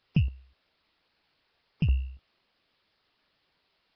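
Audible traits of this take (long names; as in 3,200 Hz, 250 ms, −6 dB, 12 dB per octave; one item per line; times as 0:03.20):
a buzz of ramps at a fixed pitch in blocks of 16 samples
chopped level 0.53 Hz, depth 65%, duty 15%
a quantiser's noise floor 12 bits, dither triangular
Nellymoser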